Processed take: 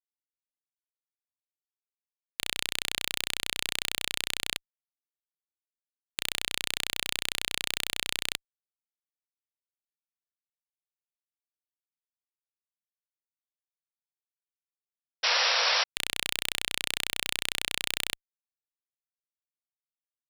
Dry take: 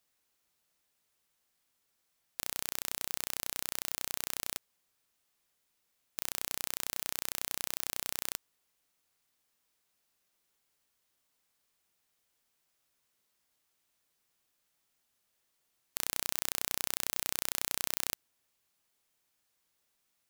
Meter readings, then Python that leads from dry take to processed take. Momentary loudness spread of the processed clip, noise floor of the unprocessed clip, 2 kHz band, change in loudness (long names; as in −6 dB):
10 LU, −79 dBFS, +12.5 dB, +5.5 dB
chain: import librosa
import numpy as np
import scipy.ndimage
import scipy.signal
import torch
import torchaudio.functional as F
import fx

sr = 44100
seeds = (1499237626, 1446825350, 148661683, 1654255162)

y = fx.weighting(x, sr, curve='D')
y = fx.fuzz(y, sr, gain_db=35.0, gate_db=-39.0)
y = fx.spec_paint(y, sr, seeds[0], shape='noise', start_s=15.23, length_s=0.61, low_hz=460.0, high_hz=5800.0, level_db=-25.0)